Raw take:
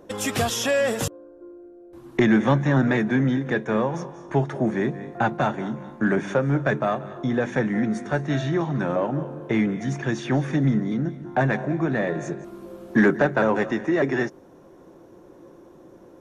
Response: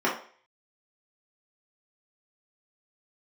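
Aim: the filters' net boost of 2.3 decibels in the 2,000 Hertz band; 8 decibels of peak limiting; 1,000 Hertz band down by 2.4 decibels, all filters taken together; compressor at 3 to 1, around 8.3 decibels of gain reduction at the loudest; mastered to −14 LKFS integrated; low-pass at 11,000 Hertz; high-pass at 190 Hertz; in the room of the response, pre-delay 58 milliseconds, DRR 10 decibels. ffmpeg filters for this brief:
-filter_complex "[0:a]highpass=190,lowpass=11000,equalizer=frequency=1000:width_type=o:gain=-4.5,equalizer=frequency=2000:width_type=o:gain=4.5,acompressor=threshold=-26dB:ratio=3,alimiter=limit=-20.5dB:level=0:latency=1,asplit=2[link_01][link_02];[1:a]atrim=start_sample=2205,adelay=58[link_03];[link_02][link_03]afir=irnorm=-1:irlink=0,volume=-24.5dB[link_04];[link_01][link_04]amix=inputs=2:normalize=0,volume=16.5dB"

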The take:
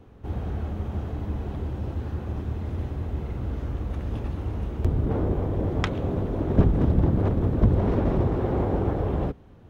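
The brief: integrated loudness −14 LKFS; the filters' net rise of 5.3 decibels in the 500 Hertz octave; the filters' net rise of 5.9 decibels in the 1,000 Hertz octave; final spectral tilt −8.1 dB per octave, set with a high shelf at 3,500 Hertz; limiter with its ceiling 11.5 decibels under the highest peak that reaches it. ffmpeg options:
ffmpeg -i in.wav -af "equalizer=frequency=500:width_type=o:gain=5.5,equalizer=frequency=1000:width_type=o:gain=6,highshelf=frequency=3500:gain=-5.5,volume=13dB,alimiter=limit=-2.5dB:level=0:latency=1" out.wav

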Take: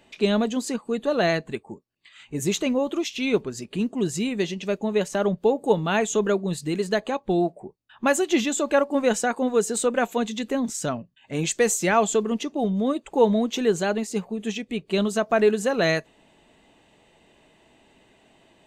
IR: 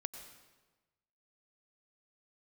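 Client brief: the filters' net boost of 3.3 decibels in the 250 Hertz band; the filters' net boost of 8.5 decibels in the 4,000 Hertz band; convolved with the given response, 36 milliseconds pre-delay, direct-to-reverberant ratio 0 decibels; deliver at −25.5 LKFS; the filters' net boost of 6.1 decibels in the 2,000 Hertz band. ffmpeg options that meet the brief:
-filter_complex "[0:a]equalizer=frequency=250:width_type=o:gain=4,equalizer=frequency=2000:width_type=o:gain=5.5,equalizer=frequency=4000:width_type=o:gain=8.5,asplit=2[link_01][link_02];[1:a]atrim=start_sample=2205,adelay=36[link_03];[link_02][link_03]afir=irnorm=-1:irlink=0,volume=1.5dB[link_04];[link_01][link_04]amix=inputs=2:normalize=0,volume=-7dB"

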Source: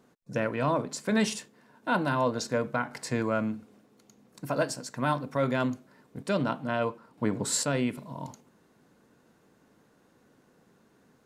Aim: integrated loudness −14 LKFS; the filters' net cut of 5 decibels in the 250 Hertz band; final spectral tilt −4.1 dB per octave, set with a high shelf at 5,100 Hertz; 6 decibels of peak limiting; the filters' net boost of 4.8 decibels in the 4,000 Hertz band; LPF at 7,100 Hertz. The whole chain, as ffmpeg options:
ffmpeg -i in.wav -af "lowpass=7100,equalizer=frequency=250:width_type=o:gain=-6,equalizer=frequency=4000:width_type=o:gain=8.5,highshelf=frequency=5100:gain=-4.5,volume=19.5dB,alimiter=limit=-0.5dB:level=0:latency=1" out.wav

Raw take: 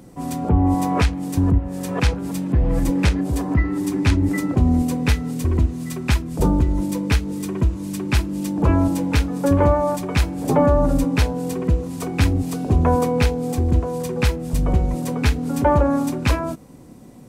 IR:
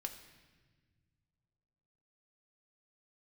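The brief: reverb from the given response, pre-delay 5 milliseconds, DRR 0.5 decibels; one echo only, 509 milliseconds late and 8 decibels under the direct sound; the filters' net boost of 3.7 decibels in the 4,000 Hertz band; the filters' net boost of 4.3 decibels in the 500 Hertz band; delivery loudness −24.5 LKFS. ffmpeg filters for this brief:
-filter_complex "[0:a]equalizer=frequency=500:width_type=o:gain=5,equalizer=frequency=4000:width_type=o:gain=4.5,aecho=1:1:509:0.398,asplit=2[link_01][link_02];[1:a]atrim=start_sample=2205,adelay=5[link_03];[link_02][link_03]afir=irnorm=-1:irlink=0,volume=1.5dB[link_04];[link_01][link_04]amix=inputs=2:normalize=0,volume=-8.5dB"

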